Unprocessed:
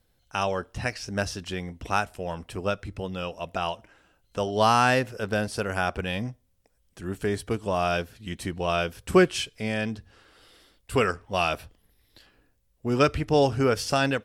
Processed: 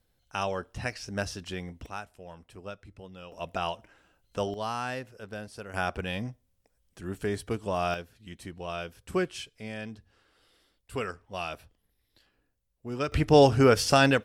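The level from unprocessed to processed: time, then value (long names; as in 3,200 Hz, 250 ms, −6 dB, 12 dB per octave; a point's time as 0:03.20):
−4 dB
from 0:01.86 −13.5 dB
from 0:03.32 −2.5 dB
from 0:04.54 −13 dB
from 0:05.74 −3.5 dB
from 0:07.94 −10 dB
from 0:13.12 +3 dB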